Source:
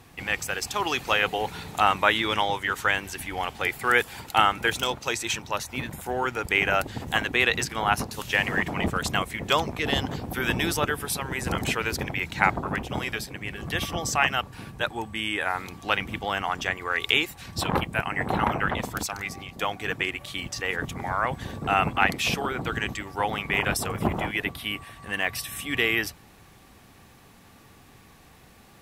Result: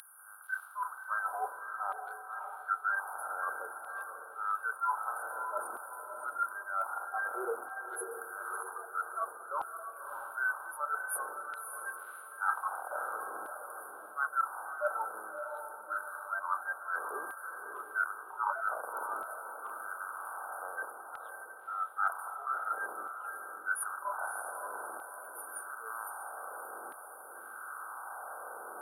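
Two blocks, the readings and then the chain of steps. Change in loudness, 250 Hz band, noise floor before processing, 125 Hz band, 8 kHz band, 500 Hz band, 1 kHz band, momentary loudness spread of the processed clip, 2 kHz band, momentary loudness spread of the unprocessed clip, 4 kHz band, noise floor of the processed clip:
-11.5 dB, -28.5 dB, -53 dBFS, under -40 dB, -11.0 dB, -13.5 dB, -7.5 dB, 10 LU, -11.0 dB, 9 LU, under -40 dB, -49 dBFS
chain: per-bin compression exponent 0.2; weighting filter A; FFT band-reject 1600–9200 Hz; HPF 110 Hz; spectral noise reduction 30 dB; high shelf 3900 Hz +8.5 dB; reverse; compressor 12:1, threshold -37 dBFS, peak gain reduction 24.5 dB; reverse; LFO high-pass saw down 0.52 Hz 320–3600 Hz; on a send: diffused feedback echo 0.599 s, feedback 44%, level -6 dB; on the sum: gain +2 dB

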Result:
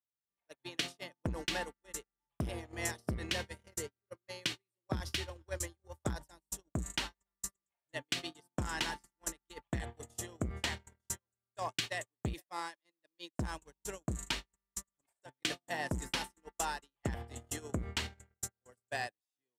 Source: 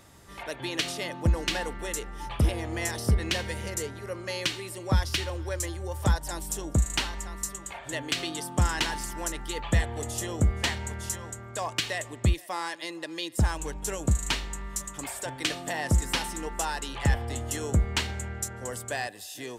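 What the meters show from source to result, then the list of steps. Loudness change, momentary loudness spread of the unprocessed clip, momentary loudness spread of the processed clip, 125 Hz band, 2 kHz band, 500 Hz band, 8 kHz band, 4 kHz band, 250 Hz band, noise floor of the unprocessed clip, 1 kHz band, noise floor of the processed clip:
-10.0 dB, 9 LU, 9 LU, -14.0 dB, -8.0 dB, -10.0 dB, -9.0 dB, -8.0 dB, -9.5 dB, -44 dBFS, -9.0 dB, under -85 dBFS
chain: HPF 56 Hz 12 dB/oct; gate -30 dBFS, range -52 dB; compressor 10:1, threshold -27 dBFS, peak gain reduction 9.5 dB; core saturation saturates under 490 Hz; gain -2.5 dB

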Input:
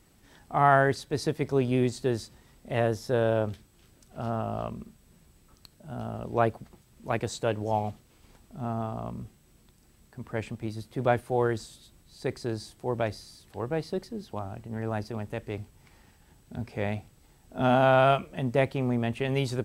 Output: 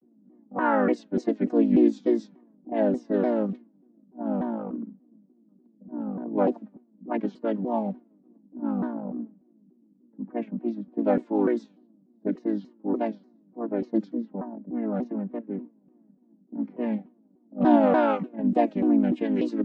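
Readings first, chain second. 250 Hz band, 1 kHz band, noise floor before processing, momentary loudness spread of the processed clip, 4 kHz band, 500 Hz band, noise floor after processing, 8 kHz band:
+8.5 dB, -1.5 dB, -61 dBFS, 15 LU, under -10 dB, +0.5 dB, -62 dBFS, under -15 dB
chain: chord vocoder major triad, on A3; low shelf 270 Hz +9 dB; low-pass opened by the level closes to 350 Hz, open at -19.5 dBFS; shaped vibrato saw down 3.4 Hz, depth 250 cents

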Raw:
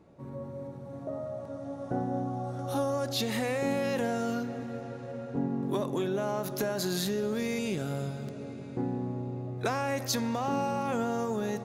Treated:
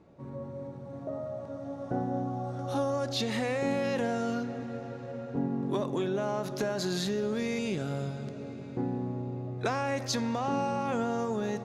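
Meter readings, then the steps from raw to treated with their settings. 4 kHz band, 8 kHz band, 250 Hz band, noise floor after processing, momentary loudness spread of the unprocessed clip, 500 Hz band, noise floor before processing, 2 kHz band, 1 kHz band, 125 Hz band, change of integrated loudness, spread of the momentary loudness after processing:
-0.5 dB, -3.0 dB, 0.0 dB, -42 dBFS, 10 LU, 0.0 dB, -42 dBFS, 0.0 dB, 0.0 dB, 0.0 dB, 0.0 dB, 10 LU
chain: LPF 7000 Hz 12 dB/oct

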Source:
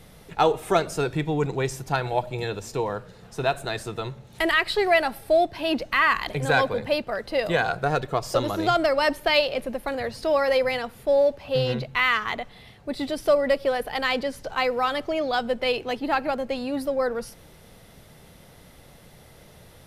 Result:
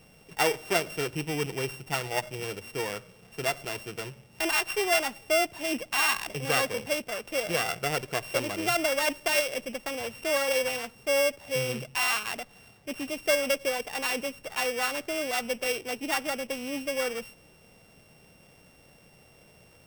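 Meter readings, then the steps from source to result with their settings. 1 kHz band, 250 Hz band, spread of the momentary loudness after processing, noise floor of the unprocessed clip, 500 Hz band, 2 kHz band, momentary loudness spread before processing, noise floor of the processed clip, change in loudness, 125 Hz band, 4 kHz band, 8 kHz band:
-7.5 dB, -6.5 dB, 10 LU, -50 dBFS, -6.5 dB, -3.5 dB, 10 LU, -57 dBFS, -4.0 dB, -8.5 dB, -1.5 dB, +8.5 dB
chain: sample sorter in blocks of 16 samples; low shelf 91 Hz -10 dB; gain -5 dB

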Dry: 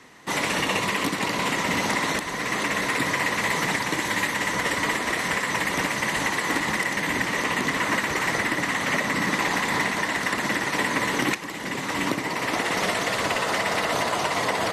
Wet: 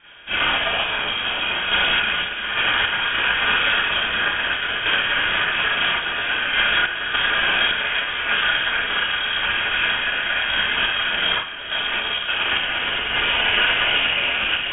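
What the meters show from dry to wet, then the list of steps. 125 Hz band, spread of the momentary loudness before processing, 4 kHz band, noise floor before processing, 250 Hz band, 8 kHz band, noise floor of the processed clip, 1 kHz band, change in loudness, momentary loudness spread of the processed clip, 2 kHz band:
-6.0 dB, 3 LU, +11.0 dB, -31 dBFS, -9.5 dB, under -40 dB, -27 dBFS, +0.5 dB, +5.0 dB, 4 LU, +6.0 dB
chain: Schroeder reverb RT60 0.38 s, combs from 27 ms, DRR -9.5 dB; random-step tremolo 3.5 Hz; inverted band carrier 3500 Hz; gain -3 dB

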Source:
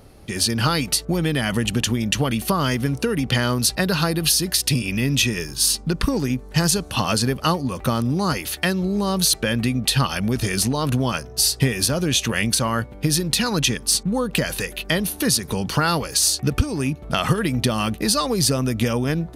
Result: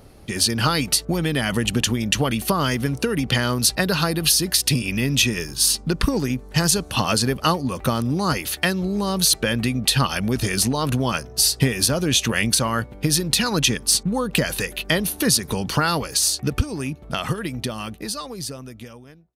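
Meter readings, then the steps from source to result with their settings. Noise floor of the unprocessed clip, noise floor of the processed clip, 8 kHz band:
-39 dBFS, -43 dBFS, +0.5 dB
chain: ending faded out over 3.82 s; harmonic-percussive split percussive +3 dB; gain -1.5 dB

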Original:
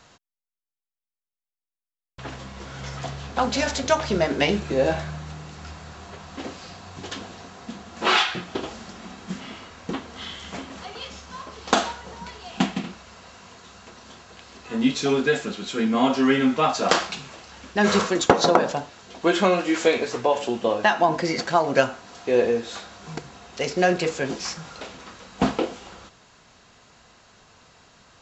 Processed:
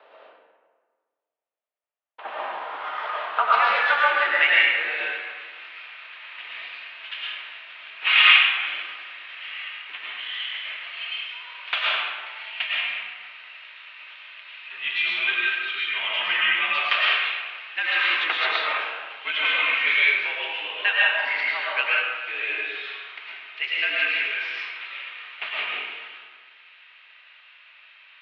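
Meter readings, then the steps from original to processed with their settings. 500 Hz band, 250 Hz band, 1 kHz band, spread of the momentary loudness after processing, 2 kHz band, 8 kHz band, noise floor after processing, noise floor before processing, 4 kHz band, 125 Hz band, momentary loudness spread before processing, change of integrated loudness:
-14.0 dB, under -25 dB, -2.0 dB, 20 LU, +9.0 dB, under -30 dB, -69 dBFS, under -85 dBFS, +5.5 dB, under -35 dB, 20 LU, +1.0 dB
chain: high-pass sweep 590 Hz -> 2400 Hz, 1.27–5.14; digital reverb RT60 1.6 s, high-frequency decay 0.55×, pre-delay 70 ms, DRR -6 dB; mistuned SSB -59 Hz 310–3300 Hz; gain -1 dB

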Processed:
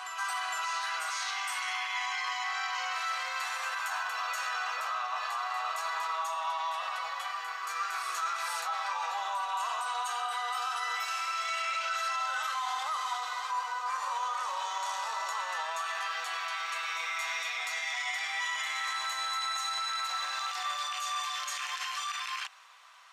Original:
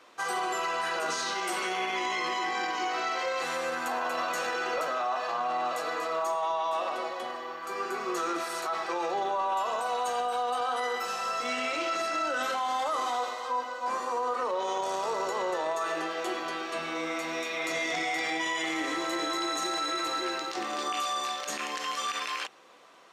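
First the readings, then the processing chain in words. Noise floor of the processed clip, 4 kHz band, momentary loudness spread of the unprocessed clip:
-38 dBFS, 0.0 dB, 4 LU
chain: inverse Chebyshev high-pass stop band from 160 Hz, stop band 80 dB; limiter -28.5 dBFS, peak gain reduction 8.5 dB; on a send: reverse echo 0.459 s -5 dB; on the sum: gain +2 dB

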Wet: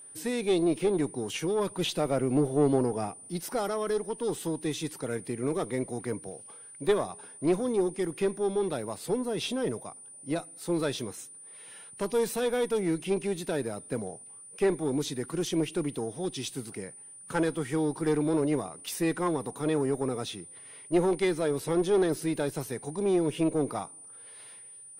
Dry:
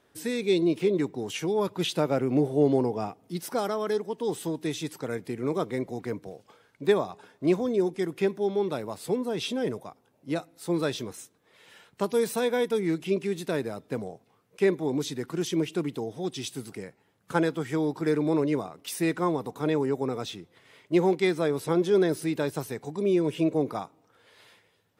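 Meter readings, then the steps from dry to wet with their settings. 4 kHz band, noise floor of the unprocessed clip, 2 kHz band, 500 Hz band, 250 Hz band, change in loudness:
-1.5 dB, -67 dBFS, -2.5 dB, -2.0 dB, -2.0 dB, -2.0 dB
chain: one diode to ground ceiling -21 dBFS; whine 9300 Hz -46 dBFS

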